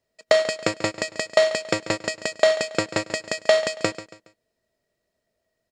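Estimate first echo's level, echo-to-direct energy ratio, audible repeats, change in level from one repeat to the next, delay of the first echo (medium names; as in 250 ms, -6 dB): -14.5 dB, -14.0 dB, 3, -9.0 dB, 139 ms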